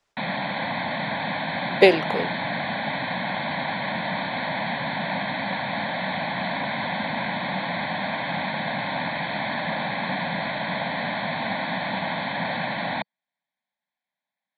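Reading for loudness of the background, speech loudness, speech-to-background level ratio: -27.0 LUFS, -19.0 LUFS, 8.0 dB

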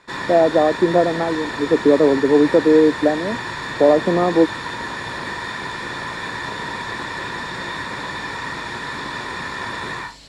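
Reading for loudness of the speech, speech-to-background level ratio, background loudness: -16.5 LUFS, 10.5 dB, -27.0 LUFS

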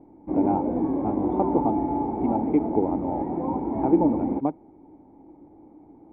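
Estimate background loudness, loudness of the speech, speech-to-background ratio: -27.0 LUFS, -27.5 LUFS, -0.5 dB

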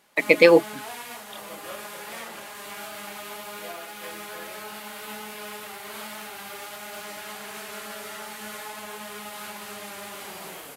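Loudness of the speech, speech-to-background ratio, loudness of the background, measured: -17.0 LUFS, 20.0 dB, -37.0 LUFS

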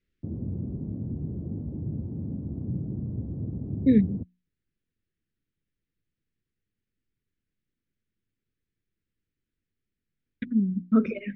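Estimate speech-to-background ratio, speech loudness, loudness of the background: 9.0 dB, -25.0 LUFS, -34.0 LUFS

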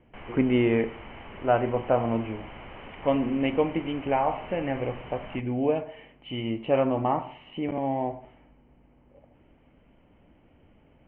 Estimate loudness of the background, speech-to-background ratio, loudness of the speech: -44.0 LUFS, 16.5 dB, -27.5 LUFS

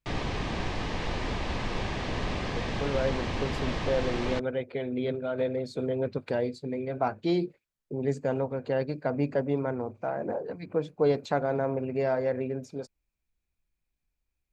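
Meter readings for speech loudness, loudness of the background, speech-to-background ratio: -30.5 LUFS, -33.0 LUFS, 2.5 dB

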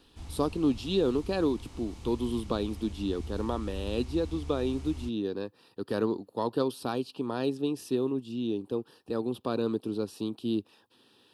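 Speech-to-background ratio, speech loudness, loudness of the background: 11.0 dB, -32.0 LUFS, -43.0 LUFS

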